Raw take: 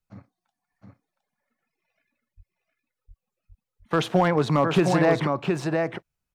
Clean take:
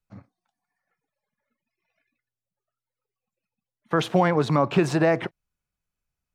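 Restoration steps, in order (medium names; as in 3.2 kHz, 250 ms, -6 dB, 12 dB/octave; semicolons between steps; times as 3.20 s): clip repair -11 dBFS; de-plosive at 2.36/3.07/3.48 s; inverse comb 714 ms -4.5 dB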